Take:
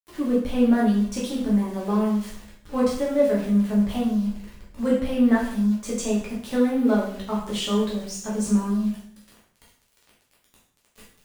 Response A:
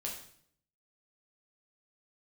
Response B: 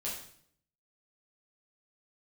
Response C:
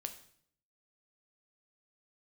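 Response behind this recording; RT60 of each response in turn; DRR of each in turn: B; 0.60 s, 0.60 s, 0.60 s; -2.0 dB, -6.5 dB, 6.5 dB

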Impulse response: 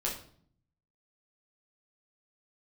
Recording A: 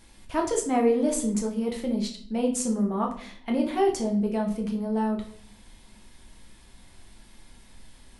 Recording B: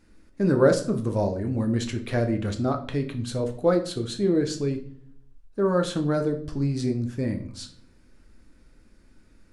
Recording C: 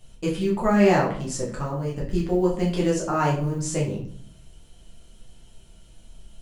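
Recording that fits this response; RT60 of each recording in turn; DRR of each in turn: C; 0.55 s, 0.55 s, 0.55 s; 0.5 dB, 4.5 dB, -5.0 dB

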